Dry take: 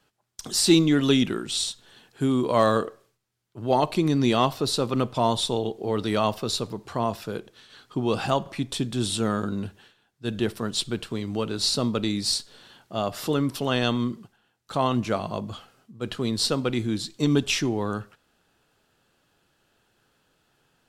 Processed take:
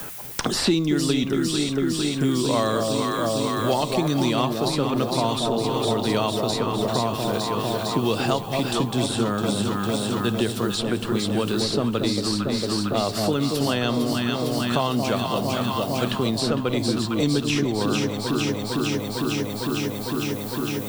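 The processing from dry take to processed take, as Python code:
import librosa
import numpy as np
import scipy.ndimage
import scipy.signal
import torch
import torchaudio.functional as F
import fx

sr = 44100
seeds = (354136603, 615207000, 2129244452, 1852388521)

y = fx.echo_alternate(x, sr, ms=227, hz=850.0, feedback_pct=83, wet_db=-4.5)
y = fx.dmg_noise_colour(y, sr, seeds[0], colour='violet', level_db=-54.0)
y = fx.band_squash(y, sr, depth_pct=100)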